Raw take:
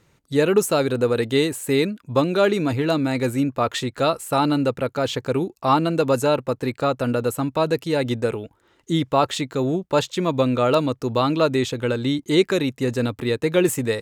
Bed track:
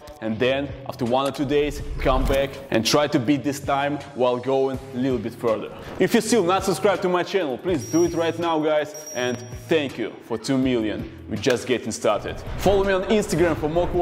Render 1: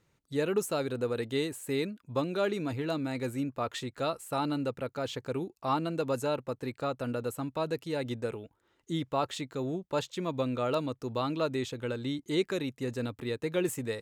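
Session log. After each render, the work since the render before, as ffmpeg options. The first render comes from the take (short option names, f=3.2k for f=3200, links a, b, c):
-af "volume=-11.5dB"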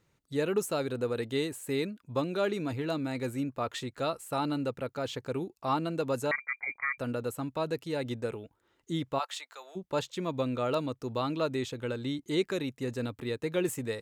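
-filter_complex "[0:a]asettb=1/sr,asplit=3[a][b][c];[a]atrim=end=6.314[d];[b]atrim=start=6.31:end=6.98,asetpts=PTS-STARTPTS,afade=t=in:d=0.004:c=qsin,afade=t=out:st=0.666:d=0.004:c=qsin,lowpass=f=2.1k:t=q:w=0.5098,lowpass=f=2.1k:t=q:w=0.6013,lowpass=f=2.1k:t=q:w=0.9,lowpass=f=2.1k:t=q:w=2.563,afreqshift=-2500[e];[c]atrim=start=6.976[f];[d][e]acrossfade=d=0.004:c1=hsin:c2=qsin[g];[g][f]acrossfade=d=0.004:c1=qsin:c2=hsin,asplit=3[h][i][j];[h]afade=t=out:st=9.18:d=0.02[k];[i]highpass=f=750:w=0.5412,highpass=f=750:w=1.3066,afade=t=in:st=9.18:d=0.02,afade=t=out:st=9.75:d=0.02[l];[j]afade=t=in:st=9.75:d=0.02[m];[k][l][m]amix=inputs=3:normalize=0"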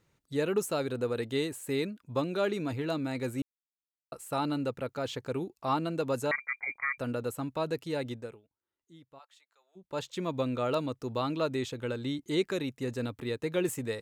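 -filter_complex "[0:a]asplit=5[a][b][c][d][e];[a]atrim=end=3.42,asetpts=PTS-STARTPTS,afade=t=out:st=3.416:d=0.004:c=hsin[f];[b]atrim=start=3.42:end=4.12,asetpts=PTS-STARTPTS,volume=0[g];[c]atrim=start=4.12:end=8.42,asetpts=PTS-STARTPTS,afade=t=in:d=0.004:c=hsin,afade=t=out:st=3.86:d=0.44:silence=0.0794328[h];[d]atrim=start=8.42:end=9.72,asetpts=PTS-STARTPTS,volume=-22dB[i];[e]atrim=start=9.72,asetpts=PTS-STARTPTS,afade=t=in:d=0.44:silence=0.0794328[j];[f][g][h][i][j]concat=n=5:v=0:a=1"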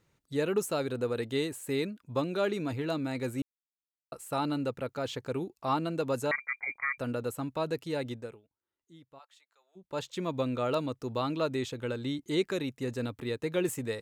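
-af anull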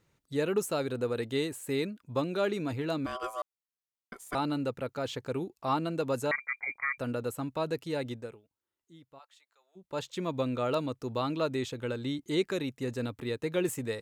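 -filter_complex "[0:a]asettb=1/sr,asplit=3[a][b][c];[a]atrim=end=3.064[d];[b]atrim=start=3.06:end=4.35,asetpts=PTS-STARTPTS,afade=t=in:d=0.004:c=qsin,afade=t=out:st=1.286:d=0.004:c=qsin,aeval=exprs='val(0)*sin(2*PI*880*n/s)':c=same[e];[c]atrim=start=4.346[f];[d][e]acrossfade=d=0.004:c1=hsin:c2=qsin[g];[g][f]acrossfade=d=0.004:c1=qsin:c2=hsin"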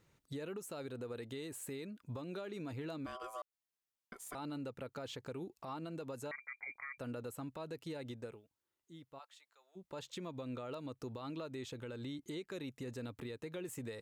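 -af "acompressor=threshold=-39dB:ratio=3,alimiter=level_in=11.5dB:limit=-24dB:level=0:latency=1:release=141,volume=-11.5dB"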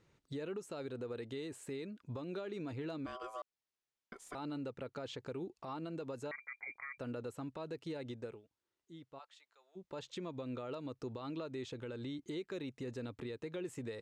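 -af "lowpass=6.6k,equalizer=f=380:t=o:w=0.77:g=3"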